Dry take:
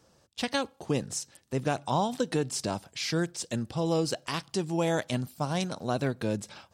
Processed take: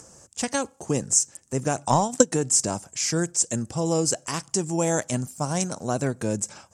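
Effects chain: upward compressor, threshold -48 dBFS; resonant high shelf 5.3 kHz +12 dB, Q 3; 1.85–2.33 s: transient shaper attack +10 dB, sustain -6 dB; distance through air 58 m; trim +3.5 dB

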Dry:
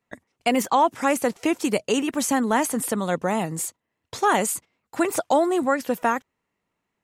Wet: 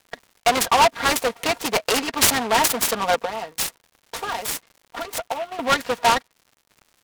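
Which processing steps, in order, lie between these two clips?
local Wiener filter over 9 samples; 3.25–5.59 s: compression 10:1, threshold -31 dBFS, peak gain reduction 16 dB; comb 4.3 ms, depth 93%; hard clipper -17.5 dBFS, distortion -8 dB; frequency weighting ITU-R 468; gate -41 dBFS, range -20 dB; peaking EQ 660 Hz +8.5 dB 1.7 oct; crackle 220 per s -41 dBFS; delay time shaken by noise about 1.7 kHz, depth 0.053 ms

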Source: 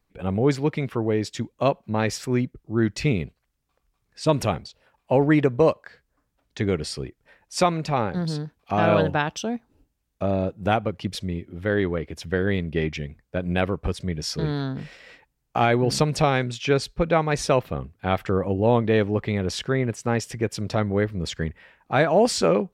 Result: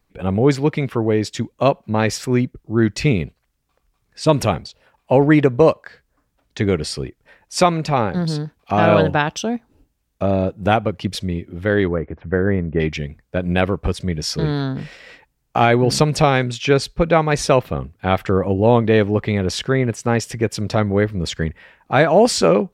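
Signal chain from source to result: 11.88–12.80 s: low-pass 1.7 kHz 24 dB/octave; trim +5.5 dB

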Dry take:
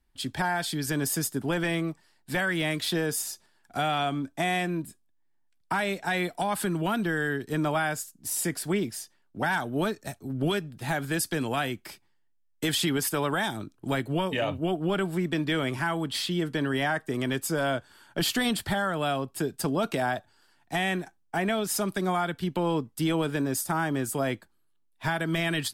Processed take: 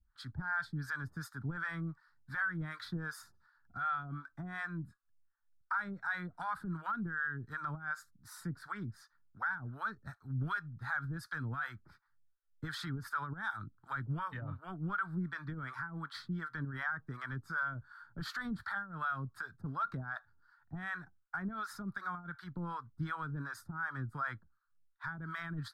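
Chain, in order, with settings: FFT filter 120 Hz 0 dB, 370 Hz -19 dB, 650 Hz -19 dB, 1.4 kHz +9 dB, 2.8 kHz -27 dB, 4 kHz -11 dB, 7.6 kHz -25 dB; peak limiter -27 dBFS, peak gain reduction 11.5 dB; harmonic tremolo 2.7 Hz, depth 100%, crossover 580 Hz; trim +1.5 dB

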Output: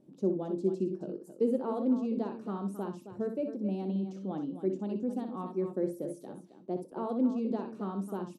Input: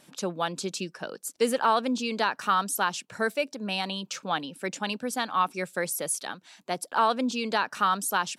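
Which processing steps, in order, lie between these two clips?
FFT filter 110 Hz 0 dB, 340 Hz +6 dB, 1.6 kHz -27 dB; loudspeakers at several distances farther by 21 m -8 dB, 92 m -11 dB; on a send at -11.5 dB: reverberation RT60 0.35 s, pre-delay 3 ms; on the sum: trim -2.5 dB

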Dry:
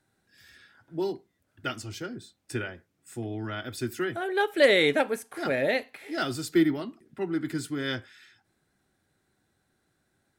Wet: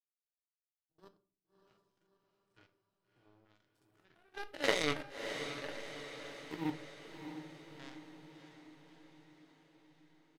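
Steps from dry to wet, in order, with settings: spectrogram pixelated in time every 100 ms; comb 7 ms, depth 49%; power-law waveshaper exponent 3; echo that smears into a reverb 628 ms, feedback 59%, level -8 dB; reverberation RT60 0.45 s, pre-delay 6 ms, DRR 10 dB; trim +1.5 dB

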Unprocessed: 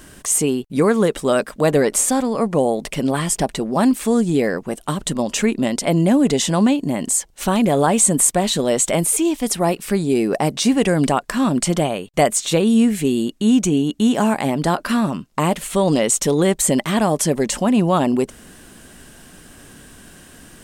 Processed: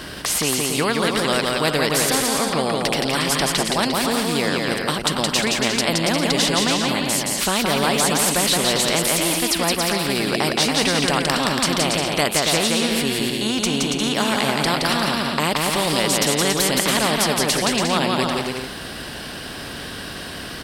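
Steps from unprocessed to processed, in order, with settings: high-pass 51 Hz; resonant high shelf 5.7 kHz -6.5 dB, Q 3; on a send: bouncing-ball echo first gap 170 ms, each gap 0.65×, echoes 5; on the sum: spectrum-flattening compressor 2:1; trim -1 dB

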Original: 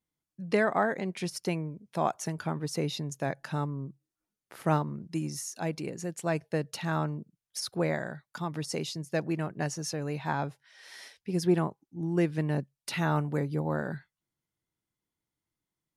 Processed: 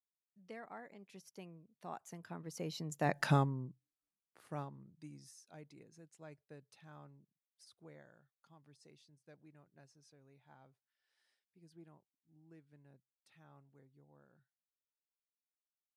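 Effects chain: Doppler pass-by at 3.25 s, 22 m/s, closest 1.8 m; trim +6.5 dB

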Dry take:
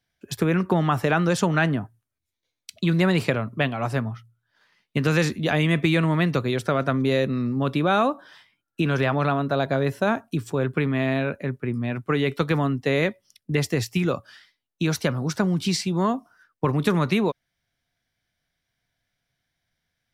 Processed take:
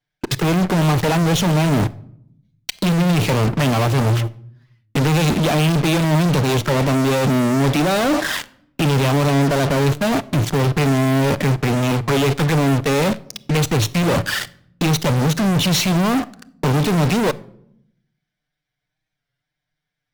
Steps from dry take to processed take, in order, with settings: median filter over 5 samples; reverse; compression 12:1, threshold -31 dBFS, peak gain reduction 16.5 dB; reverse; touch-sensitive flanger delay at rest 6.8 ms, full sweep at -32 dBFS; in parallel at -3.5 dB: fuzz box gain 60 dB, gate -54 dBFS; on the sum: reverberation RT60 0.70 s, pre-delay 7 ms, DRR 15.5 dB; warped record 33 1/3 rpm, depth 100 cents

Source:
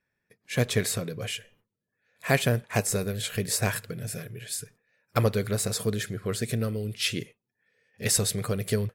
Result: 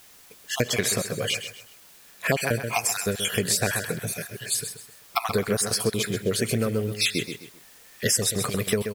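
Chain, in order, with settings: random holes in the spectrogram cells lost 34%; high-pass 220 Hz 6 dB/octave; feedback delay 130 ms, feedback 32%, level -10.5 dB; in parallel at -10 dB: word length cut 8-bit, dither triangular; on the sum: compression 6:1, threshold -26 dBFS, peak gain reduction 9 dB; trim +6.5 dB

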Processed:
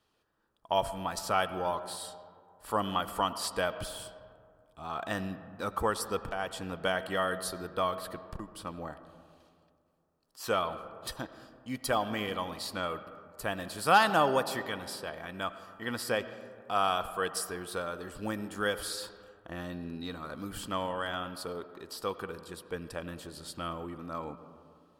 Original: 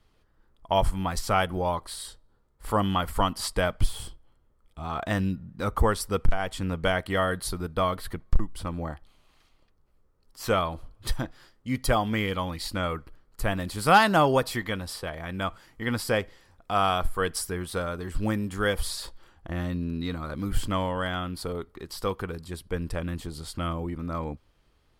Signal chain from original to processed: high-pass 340 Hz 6 dB/octave; band-stop 2.1 kHz, Q 7.3; reverberation RT60 2.3 s, pre-delay 50 ms, DRR 12 dB; trim -3.5 dB

